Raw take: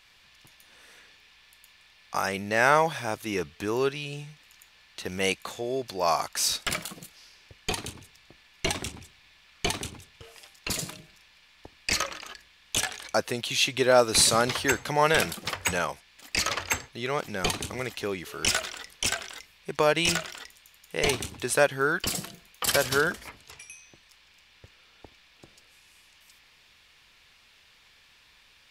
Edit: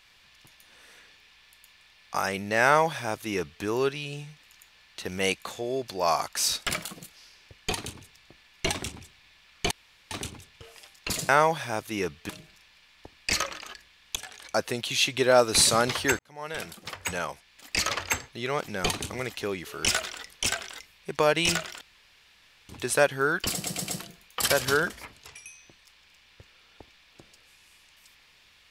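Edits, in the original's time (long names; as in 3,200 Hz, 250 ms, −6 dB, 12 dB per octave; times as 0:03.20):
0:02.64–0:03.64: duplicate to 0:10.89
0:09.71: splice in room tone 0.40 s
0:12.76–0:13.23: fade in, from −21.5 dB
0:14.79–0:16.30: fade in
0:20.41–0:21.29: fill with room tone
0:22.12: stutter 0.12 s, 4 plays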